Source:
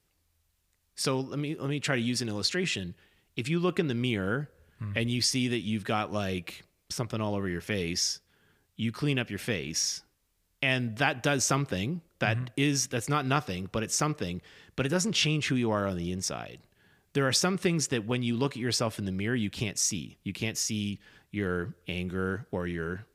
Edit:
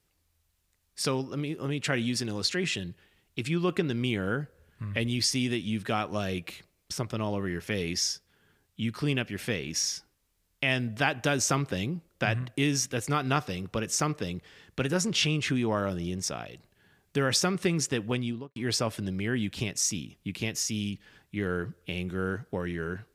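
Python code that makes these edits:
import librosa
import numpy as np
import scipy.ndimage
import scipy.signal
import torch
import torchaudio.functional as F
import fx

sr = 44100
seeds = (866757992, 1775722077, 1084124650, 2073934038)

y = fx.studio_fade_out(x, sr, start_s=18.15, length_s=0.41)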